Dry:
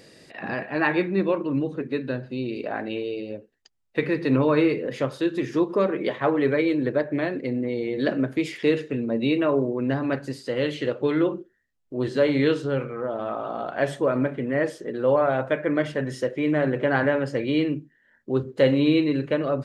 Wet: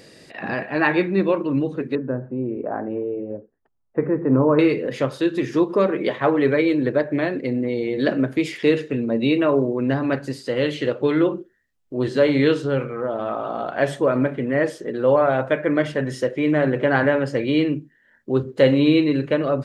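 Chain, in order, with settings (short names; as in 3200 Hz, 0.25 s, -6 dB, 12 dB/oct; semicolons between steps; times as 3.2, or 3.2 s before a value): 1.95–4.59 LPF 1300 Hz 24 dB/oct; gain +3.5 dB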